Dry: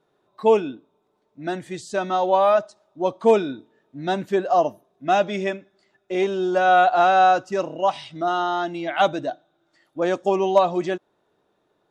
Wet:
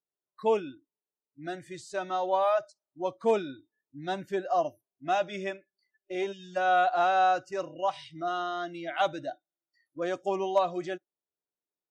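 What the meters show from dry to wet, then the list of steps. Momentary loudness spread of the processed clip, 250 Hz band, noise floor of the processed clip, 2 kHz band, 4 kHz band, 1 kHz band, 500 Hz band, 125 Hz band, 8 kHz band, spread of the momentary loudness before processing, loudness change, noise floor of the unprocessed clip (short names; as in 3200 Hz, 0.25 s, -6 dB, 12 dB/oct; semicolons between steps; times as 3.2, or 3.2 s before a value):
16 LU, -10.5 dB, under -85 dBFS, -7.5 dB, -7.5 dB, -8.0 dB, -9.0 dB, -11.0 dB, n/a, 15 LU, -8.5 dB, -70 dBFS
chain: spectral gain 6.32–6.57, 210–1600 Hz -23 dB; spectral noise reduction 26 dB; dynamic EQ 270 Hz, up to -3 dB, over -33 dBFS, Q 0.82; gain -7.5 dB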